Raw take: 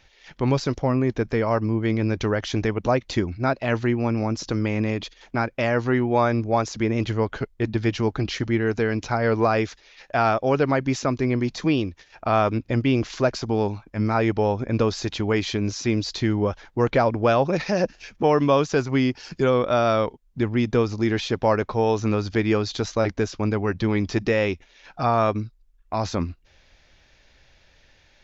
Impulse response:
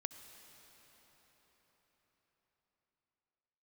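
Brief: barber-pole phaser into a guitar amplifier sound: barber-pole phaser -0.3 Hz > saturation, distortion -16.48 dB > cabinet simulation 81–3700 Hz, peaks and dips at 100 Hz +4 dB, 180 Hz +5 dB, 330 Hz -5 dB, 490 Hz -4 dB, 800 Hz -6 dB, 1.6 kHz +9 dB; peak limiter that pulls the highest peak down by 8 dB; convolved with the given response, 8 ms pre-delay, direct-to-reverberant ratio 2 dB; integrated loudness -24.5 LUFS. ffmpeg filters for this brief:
-filter_complex "[0:a]alimiter=limit=0.168:level=0:latency=1,asplit=2[s0][s1];[1:a]atrim=start_sample=2205,adelay=8[s2];[s1][s2]afir=irnorm=-1:irlink=0,volume=1[s3];[s0][s3]amix=inputs=2:normalize=0,asplit=2[s4][s5];[s5]afreqshift=-0.3[s6];[s4][s6]amix=inputs=2:normalize=1,asoftclip=threshold=0.112,highpass=81,equalizer=f=100:t=q:w=4:g=4,equalizer=f=180:t=q:w=4:g=5,equalizer=f=330:t=q:w=4:g=-5,equalizer=f=490:t=q:w=4:g=-4,equalizer=f=800:t=q:w=4:g=-6,equalizer=f=1600:t=q:w=4:g=9,lowpass=f=3700:w=0.5412,lowpass=f=3700:w=1.3066,volume=1.68"

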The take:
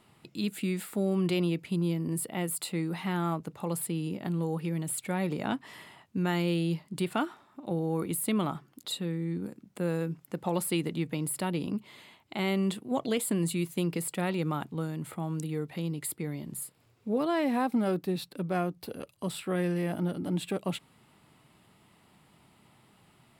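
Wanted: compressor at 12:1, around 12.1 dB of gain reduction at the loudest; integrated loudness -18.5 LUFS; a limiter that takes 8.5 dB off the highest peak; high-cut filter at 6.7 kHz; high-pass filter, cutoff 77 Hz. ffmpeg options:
-af "highpass=77,lowpass=6700,acompressor=threshold=0.0158:ratio=12,volume=15.8,alimiter=limit=0.447:level=0:latency=1"

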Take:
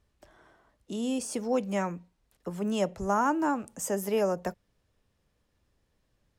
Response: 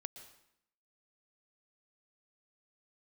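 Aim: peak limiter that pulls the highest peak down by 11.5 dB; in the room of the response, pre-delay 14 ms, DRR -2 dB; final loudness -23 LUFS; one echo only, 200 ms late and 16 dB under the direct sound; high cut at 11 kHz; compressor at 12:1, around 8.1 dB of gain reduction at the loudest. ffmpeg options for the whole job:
-filter_complex "[0:a]lowpass=11000,acompressor=threshold=0.0316:ratio=12,alimiter=level_in=3.16:limit=0.0631:level=0:latency=1,volume=0.316,aecho=1:1:200:0.158,asplit=2[s0][s1];[1:a]atrim=start_sample=2205,adelay=14[s2];[s1][s2]afir=irnorm=-1:irlink=0,volume=1.88[s3];[s0][s3]amix=inputs=2:normalize=0,volume=5.96"

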